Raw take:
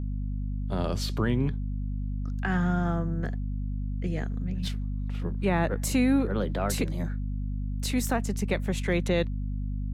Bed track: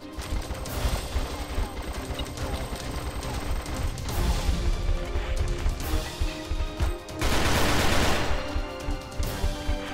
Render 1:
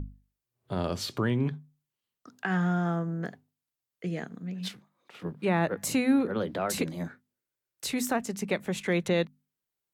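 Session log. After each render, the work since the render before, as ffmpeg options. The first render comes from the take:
ffmpeg -i in.wav -af "bandreject=frequency=50:width_type=h:width=6,bandreject=frequency=100:width_type=h:width=6,bandreject=frequency=150:width_type=h:width=6,bandreject=frequency=200:width_type=h:width=6,bandreject=frequency=250:width_type=h:width=6" out.wav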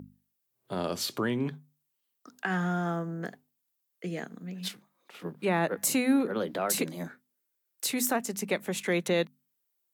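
ffmpeg -i in.wav -af "highpass=190,highshelf=frequency=9100:gain=11.5" out.wav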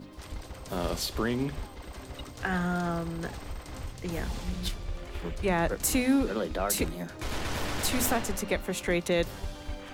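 ffmpeg -i in.wav -i bed.wav -filter_complex "[1:a]volume=-9.5dB[link_01];[0:a][link_01]amix=inputs=2:normalize=0" out.wav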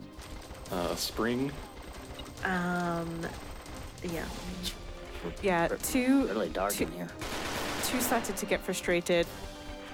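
ffmpeg -i in.wav -filter_complex "[0:a]acrossover=split=180|2500[link_01][link_02][link_03];[link_01]acompressor=threshold=-43dB:ratio=4[link_04];[link_03]alimiter=limit=-22dB:level=0:latency=1:release=491[link_05];[link_04][link_02][link_05]amix=inputs=3:normalize=0" out.wav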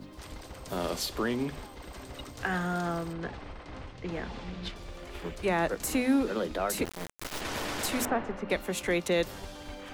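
ffmpeg -i in.wav -filter_complex "[0:a]asettb=1/sr,asplit=3[link_01][link_02][link_03];[link_01]atrim=end=3.134[link_04];[link_02]atrim=start=3.13:end=4.76,asetpts=PTS-STARTPTS,afade=type=in:duration=0.004:curve=qsin,afade=type=out:start_time=1.626:duration=0.004:curve=qsin,lowpass=3400[link_05];[link_03]atrim=start=4.756[link_06];[link_04][link_05]acrossfade=duration=0.004:curve1=hsin:curve2=qsin[link_07];[link_07][link_06]acrossfade=duration=0.004:curve1=qsin:curve2=hsin,asettb=1/sr,asplit=3[link_08][link_09][link_10];[link_08]atrim=end=6.854[link_11];[link_09]atrim=start=6.85:end=7.41,asetpts=PTS-STARTPTS,afade=type=in:duration=0.004:curve=qsin,afade=type=out:start_time=0.556:duration=0.004:curve=qsin,acrusher=bits=3:dc=4:mix=0:aa=0.000001[link_12];[link_10]atrim=start=7.406[link_13];[link_11][link_12]acrossfade=duration=0.004:curve1=hsin:curve2=qsin[link_14];[link_14][link_13]acrossfade=duration=0.004:curve1=qsin:curve2=hsin,asettb=1/sr,asplit=3[link_15][link_16][link_17];[link_15]atrim=end=8.054[link_18];[link_16]atrim=start=8.05:end=8.5,asetpts=PTS-STARTPTS,afade=type=in:duration=0.004:curve=qsin,afade=type=out:start_time=0.446:duration=0.004:curve=qsin,lowpass=1900[link_19];[link_17]atrim=start=8.496[link_20];[link_18][link_19]acrossfade=duration=0.004:curve1=hsin:curve2=qsin[link_21];[link_21][link_20]acrossfade=duration=0.004:curve1=qsin:curve2=hsin" out.wav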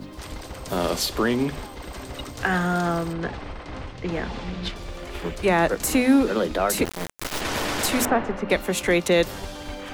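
ffmpeg -i in.wav -af "volume=8dB" out.wav

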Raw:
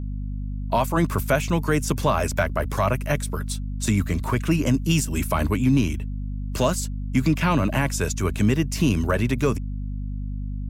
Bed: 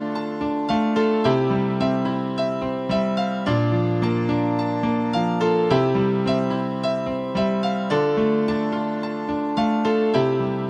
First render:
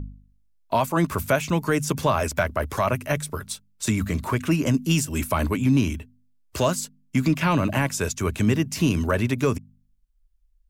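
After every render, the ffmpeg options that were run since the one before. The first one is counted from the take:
ffmpeg -i in.wav -af "bandreject=frequency=50:width_type=h:width=4,bandreject=frequency=100:width_type=h:width=4,bandreject=frequency=150:width_type=h:width=4,bandreject=frequency=200:width_type=h:width=4,bandreject=frequency=250:width_type=h:width=4" out.wav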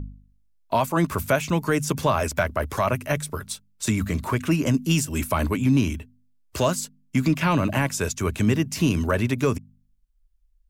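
ffmpeg -i in.wav -af anull out.wav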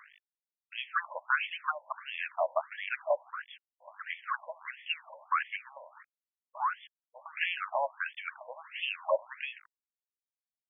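ffmpeg -i in.wav -af "acrusher=bits=6:mix=0:aa=0.000001,afftfilt=real='re*between(b*sr/1024,720*pow(2500/720,0.5+0.5*sin(2*PI*1.5*pts/sr))/1.41,720*pow(2500/720,0.5+0.5*sin(2*PI*1.5*pts/sr))*1.41)':imag='im*between(b*sr/1024,720*pow(2500/720,0.5+0.5*sin(2*PI*1.5*pts/sr))/1.41,720*pow(2500/720,0.5+0.5*sin(2*PI*1.5*pts/sr))*1.41)':win_size=1024:overlap=0.75" out.wav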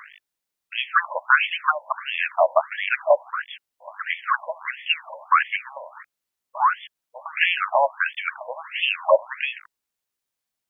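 ffmpeg -i in.wav -af "volume=12dB" out.wav

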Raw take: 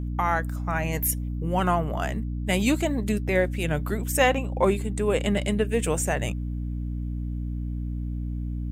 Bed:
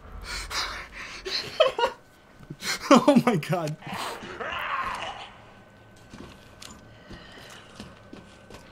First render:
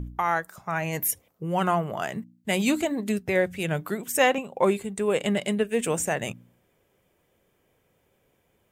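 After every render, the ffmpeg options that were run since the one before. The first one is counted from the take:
ffmpeg -i in.wav -af "bandreject=frequency=60:width_type=h:width=4,bandreject=frequency=120:width_type=h:width=4,bandreject=frequency=180:width_type=h:width=4,bandreject=frequency=240:width_type=h:width=4,bandreject=frequency=300:width_type=h:width=4" out.wav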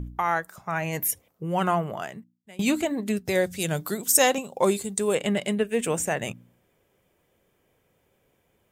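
ffmpeg -i in.wav -filter_complex "[0:a]asettb=1/sr,asplit=3[link_01][link_02][link_03];[link_01]atrim=end=3.254[link_04];[link_02]atrim=start=3.25:end=5.15,asetpts=PTS-STARTPTS,afade=type=in:duration=0.004:curve=qsin,afade=type=out:start_time=1.896:duration=0.004:curve=qsin,highshelf=frequency=3400:width_type=q:width=1.5:gain=9.5[link_05];[link_03]atrim=start=5.146[link_06];[link_04][link_05]acrossfade=duration=0.004:curve1=hsin:curve2=qsin[link_07];[link_07][link_06]acrossfade=duration=0.004:curve1=qsin:curve2=hsin,asplit=2[link_08][link_09];[link_08]atrim=end=2.59,asetpts=PTS-STARTPTS,afade=type=out:start_time=1.88:duration=0.71:curve=qua:silence=0.0707946[link_10];[link_09]atrim=start=2.59,asetpts=PTS-STARTPTS,afade=type=in:duration=0.004:curve=hsin:silence=0.0707946[link_11];[link_10][link_11]concat=n=2:v=0:a=1" out.wav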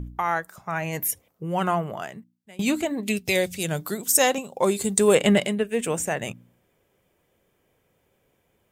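ffmpeg -i in.wav -filter_complex "[0:a]asettb=1/sr,asplit=3[link_01][link_02][link_03];[link_01]atrim=end=3.034[link_04];[link_02]atrim=start=3.03:end=3.55,asetpts=PTS-STARTPTS,afade=type=in:duration=0.004:curve=qsin,afade=type=out:start_time=0.516:duration=0.004:curve=qsin,highshelf=frequency=2000:width_type=q:width=3:gain=6[link_05];[link_03]atrim=start=3.546[link_06];[link_04][link_05]acrossfade=duration=0.004:curve1=hsin:curve2=qsin[link_07];[link_07][link_06]acrossfade=duration=0.004:curve1=qsin:curve2=hsin,asplit=3[link_08][link_09][link_10];[link_08]afade=type=out:start_time=4.79:duration=0.02[link_11];[link_09]acontrast=83,afade=type=in:start_time=4.79:duration=0.02,afade=type=out:start_time=5.46:duration=0.02[link_12];[link_10]afade=type=in:start_time=5.46:duration=0.02[link_13];[link_11][link_12][link_13]amix=inputs=3:normalize=0" out.wav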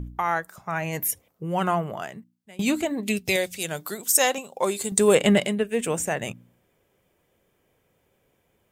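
ffmpeg -i in.wav -filter_complex "[0:a]asettb=1/sr,asplit=3[link_01][link_02][link_03];[link_01]atrim=end=3.364[link_04];[link_02]atrim=start=3.36:end=4.92,asetpts=PTS-STARTPTS,afade=type=in:duration=0.004:curve=qsin,afade=type=out:start_time=1.556:duration=0.004:curve=qsin,lowshelf=frequency=270:gain=-11.5[link_05];[link_03]atrim=start=4.916[link_06];[link_04][link_05]acrossfade=duration=0.004:curve1=hsin:curve2=qsin[link_07];[link_07][link_06]acrossfade=duration=0.004:curve1=qsin:curve2=hsin" out.wav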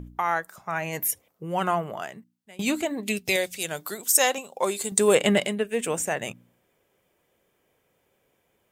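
ffmpeg -i in.wav -af "lowshelf=frequency=200:gain=-8" out.wav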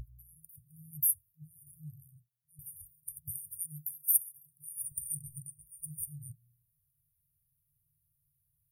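ffmpeg -i in.wav -af "afftfilt=real='re*(1-between(b*sr/4096,160,9100))':imag='im*(1-between(b*sr/4096,160,9100))':win_size=4096:overlap=0.75,bandreject=frequency=60:width_type=h:width=6,bandreject=frequency=120:width_type=h:width=6,bandreject=frequency=180:width_type=h:width=6,bandreject=frequency=240:width_type=h:width=6,bandreject=frequency=300:width_type=h:width=6" out.wav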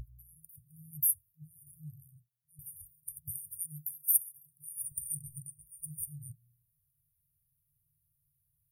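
ffmpeg -i in.wav -af anull out.wav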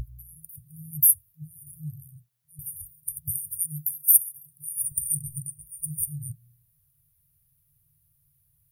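ffmpeg -i in.wav -af "volume=10.5dB,alimiter=limit=-3dB:level=0:latency=1" out.wav

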